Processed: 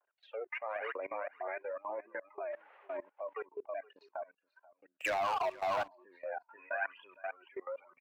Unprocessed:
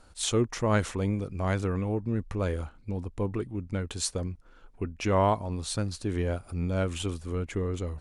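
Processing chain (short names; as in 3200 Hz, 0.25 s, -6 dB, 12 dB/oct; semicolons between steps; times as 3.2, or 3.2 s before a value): phaser 1 Hz, delay 4 ms, feedback 67%; rotary speaker horn 0.85 Hz; spectral noise reduction 20 dB; 2.51–2.96 added noise pink -54 dBFS; mistuned SSB +100 Hz 420–2500 Hz; echo 0.476 s -12.5 dB; vibrato 0.62 Hz 45 cents; level quantiser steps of 22 dB; 4.92–5.88 sample leveller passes 3; 6.49–7.27 bell 1600 Hz +10 dB 0.93 oct; gain +5.5 dB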